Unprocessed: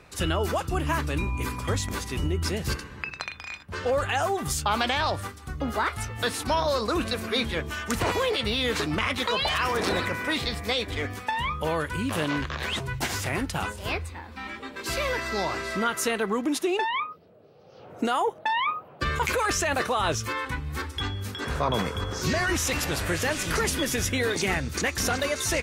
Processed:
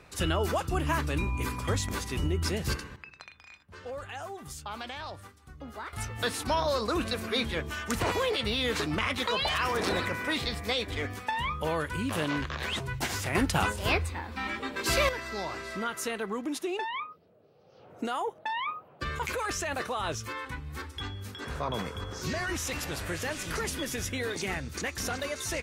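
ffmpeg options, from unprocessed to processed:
-af "asetnsamples=n=441:p=0,asendcmd='2.96 volume volume -14dB;5.93 volume volume -3dB;13.35 volume volume 3dB;15.09 volume volume -7dB',volume=-2dB"

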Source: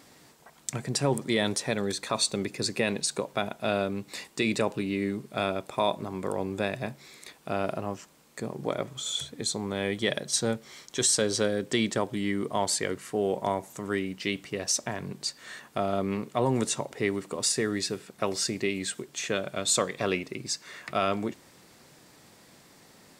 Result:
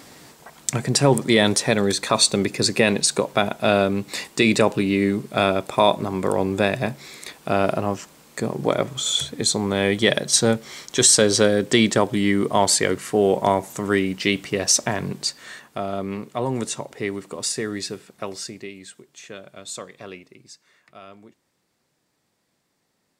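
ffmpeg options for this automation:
-af "volume=9.5dB,afade=t=out:st=15.03:d=0.65:silence=0.375837,afade=t=out:st=17.89:d=0.87:silence=0.316228,afade=t=out:st=19.94:d=0.87:silence=0.421697"

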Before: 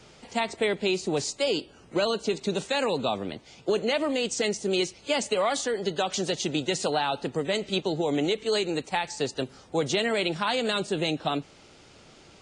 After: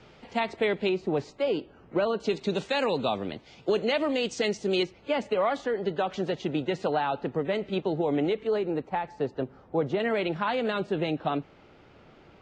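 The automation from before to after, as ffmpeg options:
-af "asetnsamples=n=441:p=0,asendcmd='0.89 lowpass f 1800;2.2 lowpass f 4200;4.83 lowpass f 2000;8.47 lowpass f 1300;10 lowpass f 2100',lowpass=3.2k"

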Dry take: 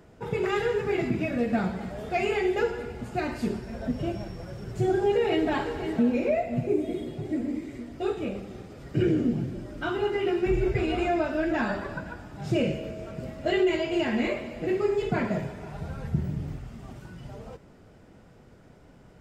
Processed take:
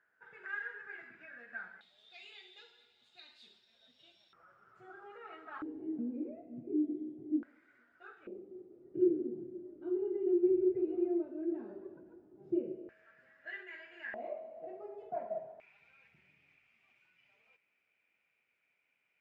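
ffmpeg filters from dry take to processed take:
-af "asetnsamples=n=441:p=0,asendcmd='1.81 bandpass f 3700;4.33 bandpass f 1300;5.62 bandpass f 300;7.43 bandpass f 1500;8.27 bandpass f 360;12.89 bandpass f 1700;14.14 bandpass f 670;15.6 bandpass f 2400',bandpass=f=1.6k:t=q:w=13:csg=0"

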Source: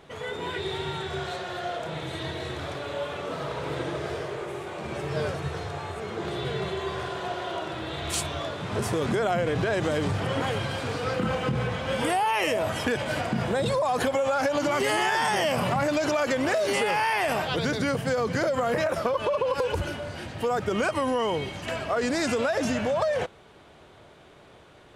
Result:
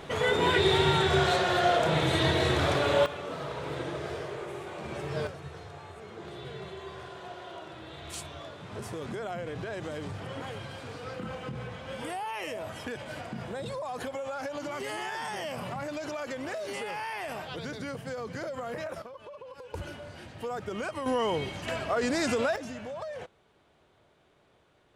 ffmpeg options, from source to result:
-af "asetnsamples=n=441:p=0,asendcmd='3.06 volume volume -4dB;5.27 volume volume -11dB;19.02 volume volume -20dB;19.74 volume volume -9dB;21.06 volume volume -2dB;22.56 volume volume -13dB',volume=8dB"

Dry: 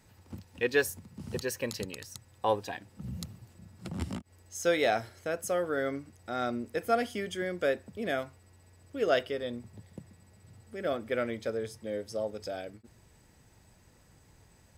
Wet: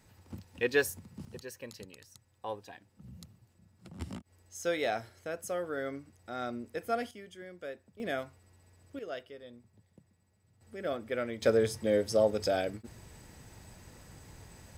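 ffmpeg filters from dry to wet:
-af "asetnsamples=n=441:p=0,asendcmd='1.25 volume volume -11dB;4 volume volume -5dB;7.11 volume volume -13.5dB;8 volume volume -3dB;8.99 volume volume -14dB;10.61 volume volume -3dB;11.42 volume volume 8dB',volume=-1dB"

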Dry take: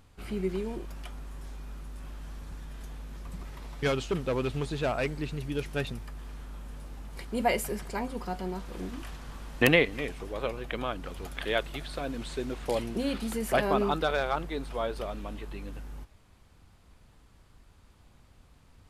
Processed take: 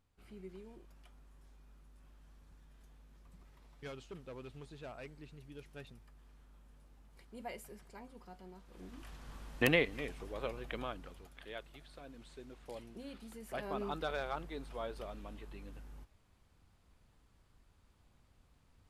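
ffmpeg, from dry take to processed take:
-af "volume=0.5dB,afade=t=in:st=8.66:d=0.68:silence=0.266073,afade=t=out:st=10.78:d=0.5:silence=0.298538,afade=t=in:st=13.45:d=0.63:silence=0.398107"

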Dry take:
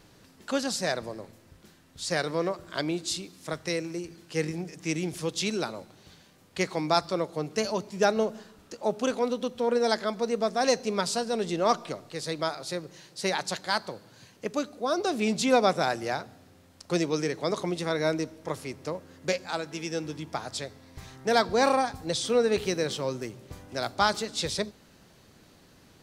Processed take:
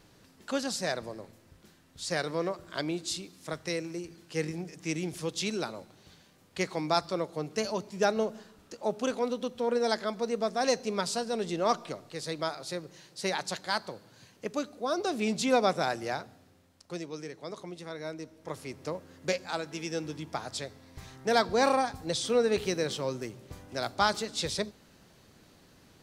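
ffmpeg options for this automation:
-af "volume=7dB,afade=t=out:st=16.18:d=0.8:silence=0.354813,afade=t=in:st=18.17:d=0.68:silence=0.316228"

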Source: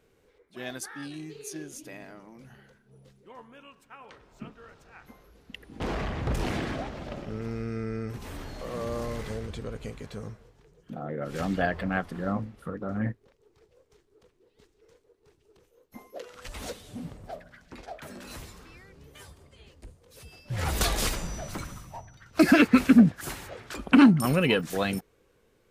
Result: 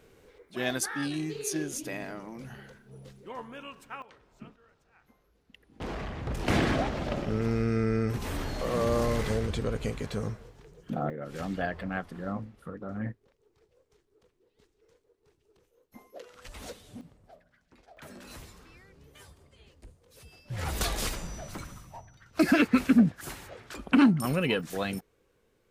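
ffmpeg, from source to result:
-af "asetnsamples=n=441:p=0,asendcmd='4.02 volume volume -5.5dB;4.56 volume volume -12.5dB;5.8 volume volume -5dB;6.48 volume volume 6dB;11.1 volume volume -5dB;17.01 volume volume -14.5dB;17.97 volume volume -4dB',volume=7dB"

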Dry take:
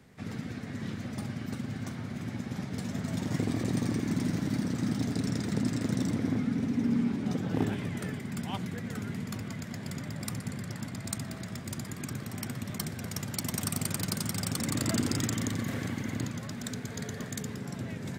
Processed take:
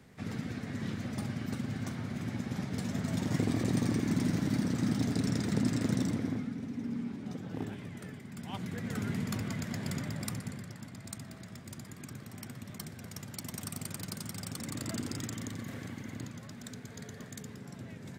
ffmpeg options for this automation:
-af "volume=11dB,afade=t=out:st=5.9:d=0.65:silence=0.354813,afade=t=in:st=8.36:d=0.72:silence=0.281838,afade=t=out:st=9.92:d=0.82:silence=0.316228"

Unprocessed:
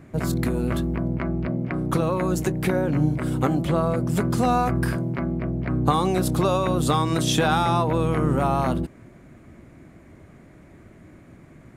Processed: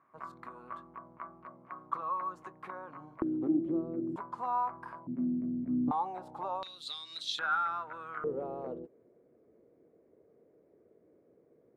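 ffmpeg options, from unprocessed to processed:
-af "asetnsamples=n=441:p=0,asendcmd='3.22 bandpass f 320;4.16 bandpass f 990;5.07 bandpass f 250;5.91 bandpass f 860;6.63 bandpass f 4000;7.39 bandpass f 1400;8.24 bandpass f 460',bandpass=f=1.1k:t=q:w=8.9:csg=0"

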